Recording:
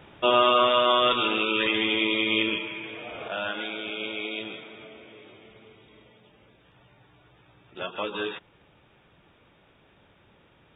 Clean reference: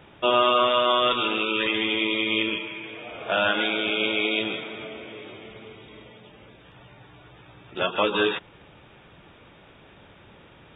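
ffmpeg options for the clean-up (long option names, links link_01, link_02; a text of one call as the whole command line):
ffmpeg -i in.wav -af "asetnsamples=nb_out_samples=441:pad=0,asendcmd='3.28 volume volume 8.5dB',volume=0dB" out.wav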